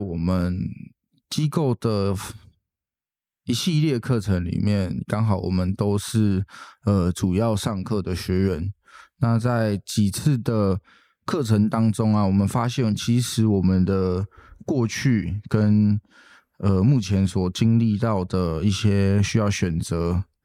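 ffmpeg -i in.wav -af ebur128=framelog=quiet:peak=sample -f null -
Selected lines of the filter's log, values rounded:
Integrated loudness:
  I:         -22.4 LUFS
  Threshold: -32.8 LUFS
Loudness range:
  LRA:         3.8 LU
  Threshold: -42.9 LUFS
  LRA low:   -25.1 LUFS
  LRA high:  -21.2 LUFS
Sample peak:
  Peak:       -6.2 dBFS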